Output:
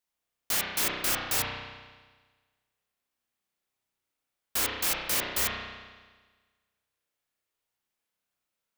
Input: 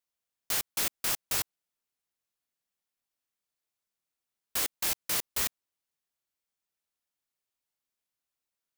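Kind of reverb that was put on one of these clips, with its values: spring tank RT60 1.4 s, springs 32 ms, chirp 60 ms, DRR -2.5 dB; gain +1.5 dB

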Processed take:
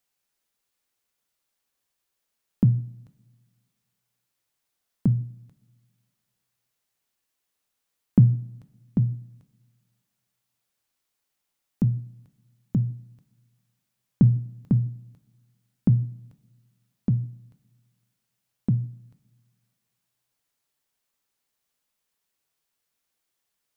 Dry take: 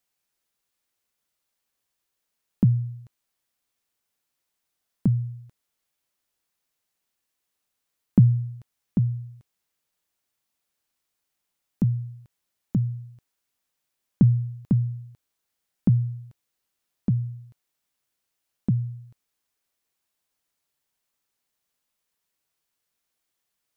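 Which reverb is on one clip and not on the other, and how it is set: two-slope reverb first 0.53 s, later 1.8 s, from -18 dB, DRR 12.5 dB

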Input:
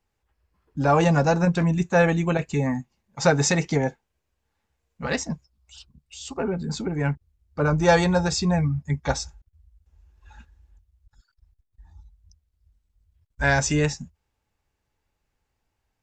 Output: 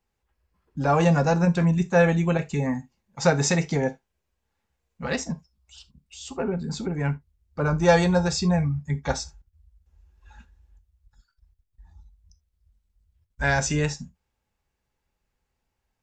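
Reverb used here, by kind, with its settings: non-linear reverb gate 0.1 s falling, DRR 11 dB; gain -2 dB

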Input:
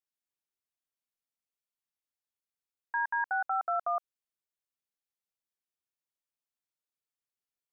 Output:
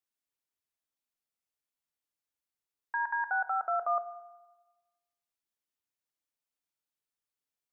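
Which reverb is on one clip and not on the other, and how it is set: FDN reverb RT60 1.2 s, low-frequency decay 0.95×, high-frequency decay 0.4×, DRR 10 dB

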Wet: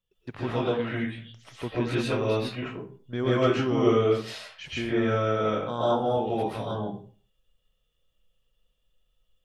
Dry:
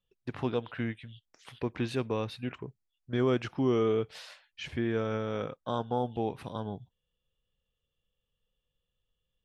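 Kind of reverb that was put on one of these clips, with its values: digital reverb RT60 0.43 s, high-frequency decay 0.65×, pre-delay 90 ms, DRR -9 dB; gain -1.5 dB

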